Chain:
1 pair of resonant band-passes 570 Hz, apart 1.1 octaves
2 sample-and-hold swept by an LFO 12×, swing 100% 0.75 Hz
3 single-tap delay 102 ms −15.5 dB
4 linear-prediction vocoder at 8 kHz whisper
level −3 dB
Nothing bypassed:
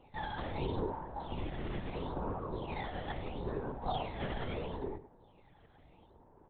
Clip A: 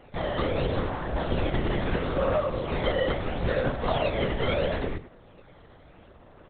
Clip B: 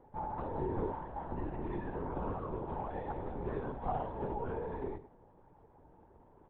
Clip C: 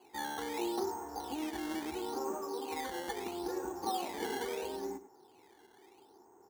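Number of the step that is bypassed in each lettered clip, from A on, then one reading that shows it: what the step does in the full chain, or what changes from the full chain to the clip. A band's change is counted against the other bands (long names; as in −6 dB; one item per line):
1, 1 kHz band −5.0 dB
2, distortion level −4 dB
4, change in integrated loudness +1.5 LU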